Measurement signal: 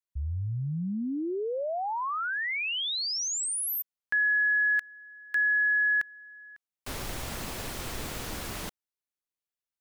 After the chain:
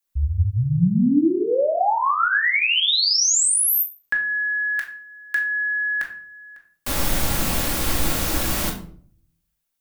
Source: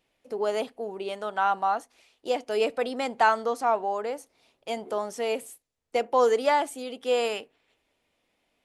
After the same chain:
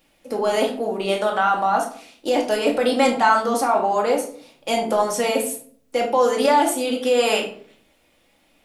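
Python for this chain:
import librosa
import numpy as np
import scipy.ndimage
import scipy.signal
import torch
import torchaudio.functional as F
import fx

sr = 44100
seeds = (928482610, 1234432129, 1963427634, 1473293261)

p1 = fx.high_shelf(x, sr, hz=9300.0, db=9.0)
p2 = fx.over_compress(p1, sr, threshold_db=-28.0, ratio=-0.5)
p3 = p1 + (p2 * librosa.db_to_amplitude(1.5))
y = fx.room_shoebox(p3, sr, seeds[0], volume_m3=560.0, walls='furnished', distance_m=2.3)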